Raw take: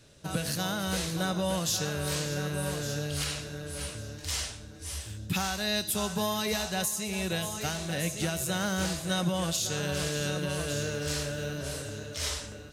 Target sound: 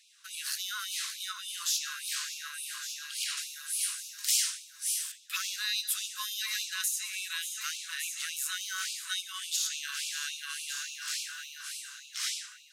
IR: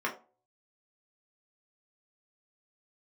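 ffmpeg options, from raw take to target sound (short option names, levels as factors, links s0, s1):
-filter_complex "[0:a]asettb=1/sr,asplit=3[s0][s1][s2];[s0]atrim=end=3.374[s3];[s1]atrim=start=3.37:end=5.12,asetpts=PTS-STARTPTS,afade=t=in:d=0.004:c=qsin,afade=t=out:st=1.746:d=0.004:c=qsin,aemphasis=mode=production:type=50kf[s4];[s2]atrim=start=5.116[s5];[s3][s4]acrossfade=d=0.004:c1=hsin:c2=qsin[s6];[s6][s5]acrossfade=d=0.004:c1=qsin:c2=hsin,asplit=2[s7][s8];[1:a]atrim=start_sample=2205,asetrate=26019,aresample=44100[s9];[s8][s9]afir=irnorm=-1:irlink=0,volume=0.0376[s10];[s7][s10]amix=inputs=2:normalize=0,afftfilt=real='re*gte(b*sr/1024,970*pow(2300/970,0.5+0.5*sin(2*PI*3.5*pts/sr)))':imag='im*gte(b*sr/1024,970*pow(2300/970,0.5+0.5*sin(2*PI*3.5*pts/sr)))':win_size=1024:overlap=0.75"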